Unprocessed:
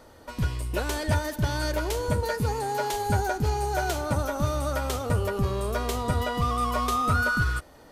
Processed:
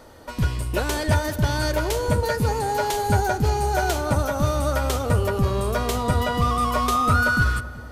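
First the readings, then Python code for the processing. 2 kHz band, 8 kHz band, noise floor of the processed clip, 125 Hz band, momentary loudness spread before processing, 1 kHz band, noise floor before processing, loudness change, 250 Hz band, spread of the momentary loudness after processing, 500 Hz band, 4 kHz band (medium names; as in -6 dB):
+4.5 dB, +4.5 dB, -37 dBFS, +5.0 dB, 5 LU, +4.5 dB, -51 dBFS, +4.5 dB, +5.0 dB, 5 LU, +4.5 dB, +4.5 dB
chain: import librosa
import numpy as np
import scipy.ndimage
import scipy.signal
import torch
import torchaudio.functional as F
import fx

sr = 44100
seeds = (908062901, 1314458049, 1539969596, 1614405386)

y = fx.echo_filtered(x, sr, ms=190, feedback_pct=60, hz=1600.0, wet_db=-14.5)
y = y * 10.0 ** (4.5 / 20.0)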